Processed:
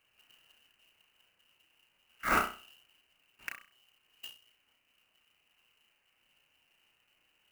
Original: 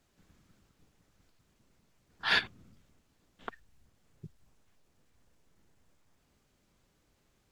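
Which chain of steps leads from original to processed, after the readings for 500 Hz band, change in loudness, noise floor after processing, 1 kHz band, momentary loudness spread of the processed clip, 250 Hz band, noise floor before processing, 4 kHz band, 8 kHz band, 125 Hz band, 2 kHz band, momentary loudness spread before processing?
+5.0 dB, −6.0 dB, −75 dBFS, +6.5 dB, 20 LU, +6.5 dB, −73 dBFS, −10.5 dB, +8.5 dB, −0.5 dB, −3.0 dB, 19 LU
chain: high-pass filter 56 Hz
on a send: flutter between parallel walls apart 5.6 metres, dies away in 0.36 s
on the sum: voice inversion scrambler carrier 3,000 Hz
converter with an unsteady clock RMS 0.024 ms

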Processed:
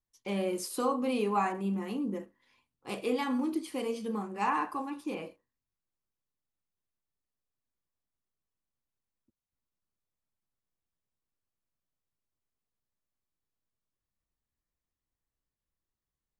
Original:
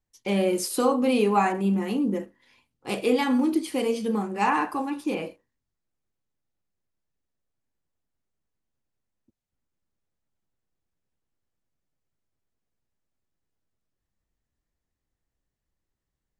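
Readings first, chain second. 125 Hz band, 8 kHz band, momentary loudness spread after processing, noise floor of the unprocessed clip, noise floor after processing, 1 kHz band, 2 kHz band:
−8.5 dB, −8.5 dB, 12 LU, −85 dBFS, below −85 dBFS, −6.5 dB, −8.0 dB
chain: parametric band 1,100 Hz +5.5 dB 0.36 octaves
level −8.5 dB

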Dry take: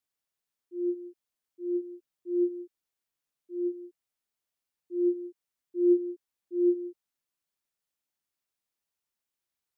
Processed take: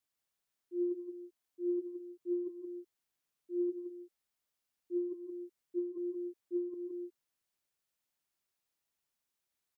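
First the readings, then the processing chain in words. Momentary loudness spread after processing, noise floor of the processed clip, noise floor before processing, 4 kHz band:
12 LU, below −85 dBFS, below −85 dBFS, can't be measured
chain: compressor whose output falls as the input rises −30 dBFS, ratio −1
single-tap delay 172 ms −5 dB
level −3.5 dB

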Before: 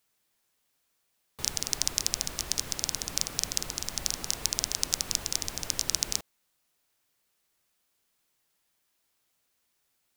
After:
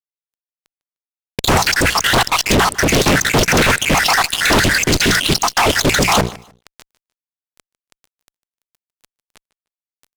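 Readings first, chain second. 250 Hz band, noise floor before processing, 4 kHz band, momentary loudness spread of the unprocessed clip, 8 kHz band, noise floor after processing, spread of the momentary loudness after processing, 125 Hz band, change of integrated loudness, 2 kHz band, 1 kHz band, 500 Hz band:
+28.0 dB, −76 dBFS, +14.5 dB, 4 LU, +9.0 dB, below −85 dBFS, 2 LU, +25.5 dB, +16.0 dB, +28.5 dB, +29.0 dB, +28.5 dB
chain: time-frequency cells dropped at random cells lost 72%
mains-hum notches 60/120/180 Hz
healed spectral selection 0:04.68–0:05.32, 450–1,400 Hz after
Bessel low-pass filter 2,700 Hz, order 2
low-shelf EQ 64 Hz −11 dB
reversed playback
upward compression, threshold −50 dBFS
reversed playback
fuzz pedal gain 61 dB, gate −57 dBFS
on a send: repeating echo 151 ms, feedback 25%, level −21.5 dB
on the sum: highs frequency-modulated by the lows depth 0.47 ms
level +3.5 dB

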